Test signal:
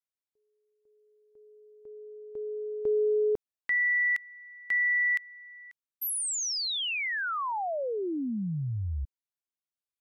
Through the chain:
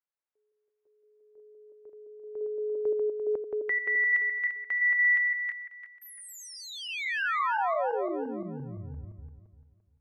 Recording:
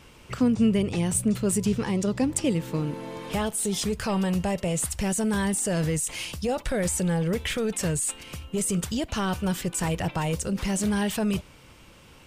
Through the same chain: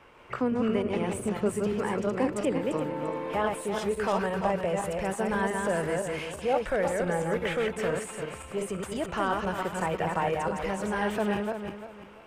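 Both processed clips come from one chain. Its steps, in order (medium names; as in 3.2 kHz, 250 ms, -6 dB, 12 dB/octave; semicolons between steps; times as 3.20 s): backward echo that repeats 172 ms, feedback 53%, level -3 dB; three-band isolator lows -14 dB, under 390 Hz, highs -19 dB, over 2.2 kHz; trim +2.5 dB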